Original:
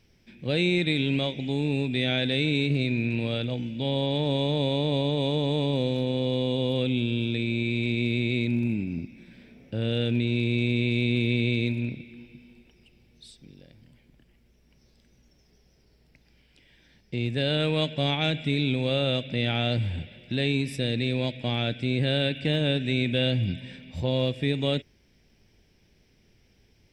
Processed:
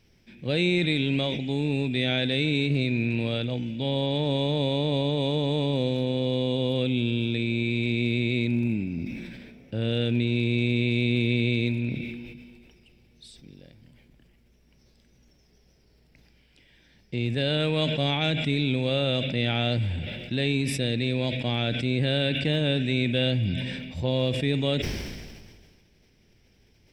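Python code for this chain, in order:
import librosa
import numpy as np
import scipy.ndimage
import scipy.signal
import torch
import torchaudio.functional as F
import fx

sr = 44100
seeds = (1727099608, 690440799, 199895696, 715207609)

y = fx.sustainer(x, sr, db_per_s=33.0)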